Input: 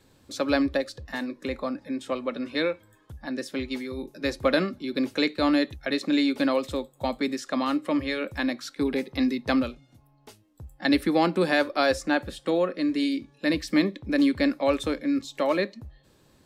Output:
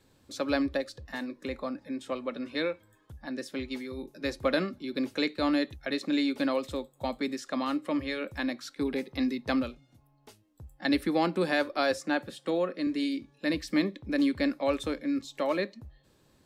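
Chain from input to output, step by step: 11.78–12.87 HPF 110 Hz 24 dB/oct; gain -4.5 dB

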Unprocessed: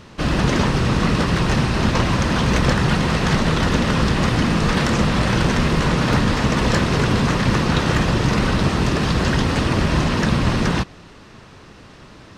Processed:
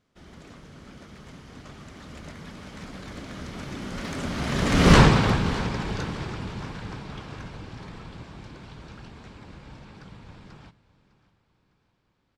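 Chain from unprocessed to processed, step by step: Doppler pass-by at 4.96, 52 m/s, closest 4.8 m; on a send: feedback echo 0.605 s, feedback 41%, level -18.5 dB; on the sum: gain +6 dB

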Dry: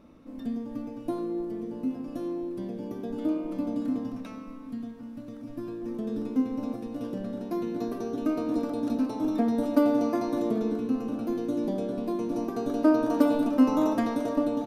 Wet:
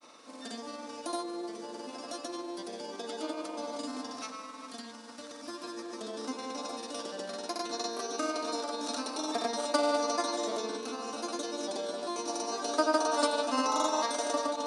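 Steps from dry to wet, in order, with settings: HPF 910 Hz 12 dB/oct; resonant high shelf 3500 Hz +7.5 dB, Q 1.5; grains, pitch spread up and down by 0 st; in parallel at +1 dB: compressor, threshold -52 dBFS, peak gain reduction 21 dB; on the sum: downsampling 22050 Hz; gain +6.5 dB

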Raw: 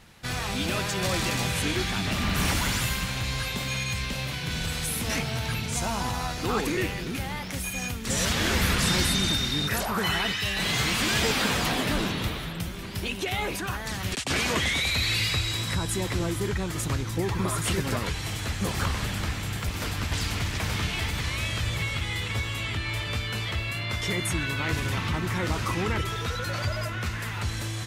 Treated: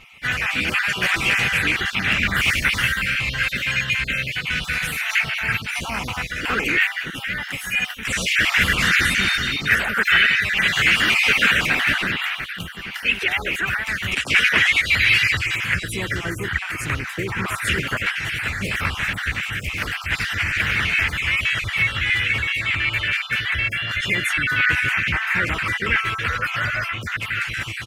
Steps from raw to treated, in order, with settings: random spectral dropouts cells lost 35%; band shelf 2000 Hz +15 dB 1.3 oct; harmoniser -3 st -13 dB, +3 st -11 dB

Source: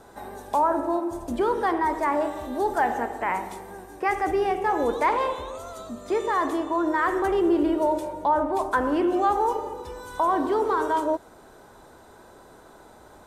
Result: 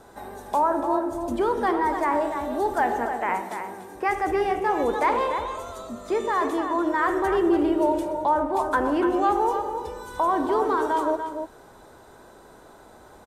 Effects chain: 3.12–3.94 HPF 200 Hz -> 80 Hz 24 dB/oct; outdoor echo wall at 50 m, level -7 dB

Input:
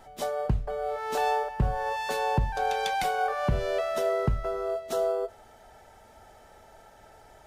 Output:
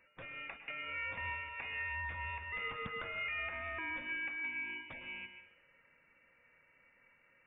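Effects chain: inverse Chebyshev high-pass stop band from 550 Hz, stop band 40 dB; gate -50 dBFS, range -19 dB; tilt +4.5 dB/oct; compressor 3:1, threshold -50 dBFS, peak gain reduction 21.5 dB; soft clip -36.5 dBFS, distortion -20 dB; air absorption 150 m; on a send at -8 dB: reverb RT60 0.80 s, pre-delay 0.1 s; on the sum: inverted band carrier 3600 Hz; gain +10 dB

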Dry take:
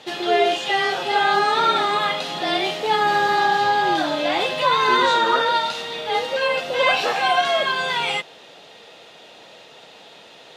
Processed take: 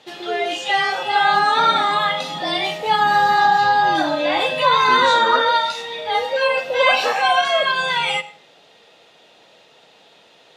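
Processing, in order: spectral noise reduction 9 dB; on a send: reverb RT60 0.40 s, pre-delay 83 ms, DRR 16 dB; on the sum: gain +3 dB

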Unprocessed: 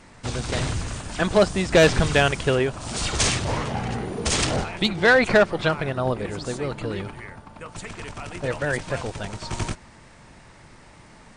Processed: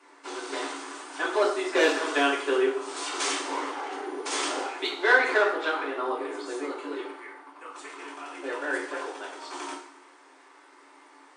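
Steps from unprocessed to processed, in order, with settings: rippled Chebyshev high-pass 270 Hz, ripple 9 dB; two-slope reverb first 0.5 s, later 1.7 s, DRR -5 dB; gain -4.5 dB

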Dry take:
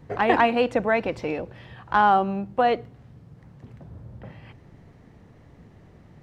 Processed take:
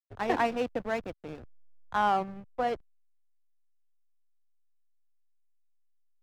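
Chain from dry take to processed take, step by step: backlash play -22.5 dBFS; three-band expander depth 40%; gain -8.5 dB

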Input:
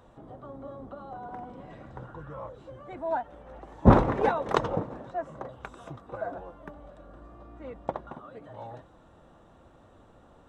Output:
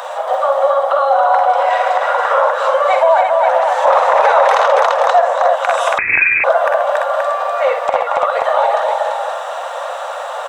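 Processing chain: steep high-pass 530 Hz 72 dB/oct; compressor 3:1, threshold -47 dBFS, peak gain reduction 21 dB; on a send: tapped delay 48/61/131/278/340/527 ms -8/-9.5/-13.5/-5/-6.5/-7 dB; 5.98–6.44 on the sum: inverted band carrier 3100 Hz; maximiser +35 dB; gain -1 dB

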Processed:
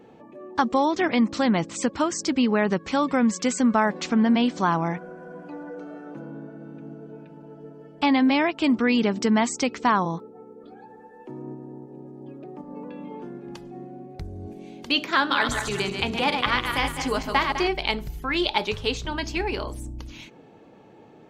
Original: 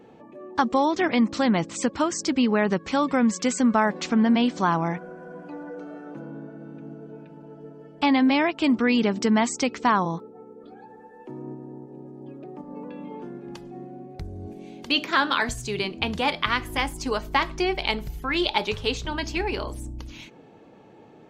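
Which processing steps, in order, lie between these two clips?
15.19–17.68 regenerating reverse delay 0.102 s, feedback 58%, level -5 dB

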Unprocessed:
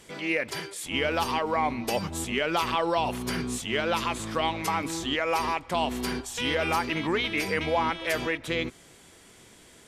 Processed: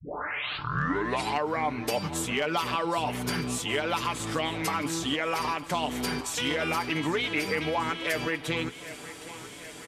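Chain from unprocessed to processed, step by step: tape start at the beginning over 1.49 s; HPF 43 Hz; comb 6.8 ms, depth 52%; compressor 2:1, threshold -39 dBFS, peak gain reduction 10.5 dB; hard clip -23.5 dBFS, distortion -36 dB; on a send: thinning echo 0.769 s, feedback 66%, high-pass 170 Hz, level -15.5 dB; on the sum: gain +6.5 dB

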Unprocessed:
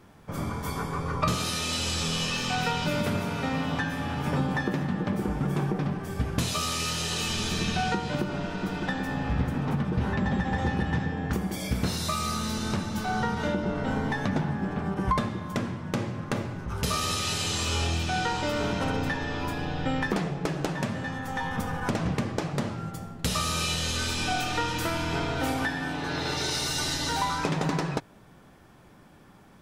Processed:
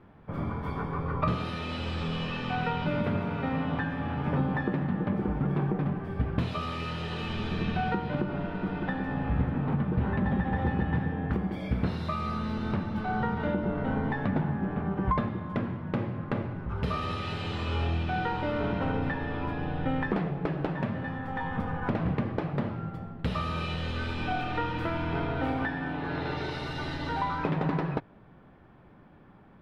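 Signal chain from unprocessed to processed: air absorption 450 m

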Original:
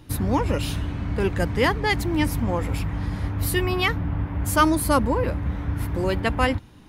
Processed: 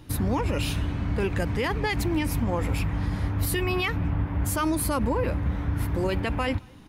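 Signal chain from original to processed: dynamic EQ 2500 Hz, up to +6 dB, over -47 dBFS, Q 5.7; limiter -17 dBFS, peak gain reduction 11.5 dB; speakerphone echo 0.22 s, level -26 dB

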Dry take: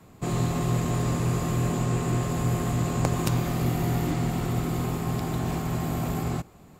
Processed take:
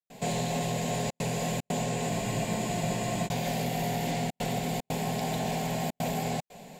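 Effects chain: fixed phaser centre 330 Hz, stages 6; step gate ".xxxxxxxxxx.xxxx" 150 bpm -60 dB; compressor 3:1, threshold -34 dBFS, peak gain reduction 9.5 dB; overdrive pedal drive 17 dB, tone 4100 Hz, clips at -19.5 dBFS; spectral freeze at 2.12, 1.15 s; gain +3 dB

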